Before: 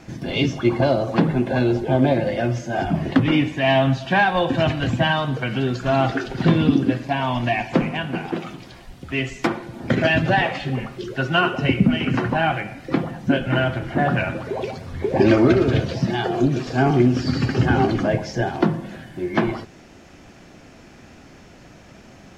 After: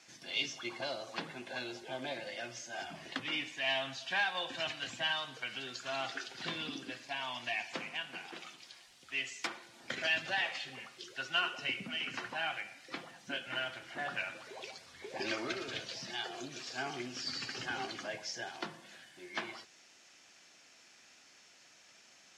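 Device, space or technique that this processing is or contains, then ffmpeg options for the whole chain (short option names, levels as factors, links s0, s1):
piezo pickup straight into a mixer: -af "lowpass=6800,aderivative"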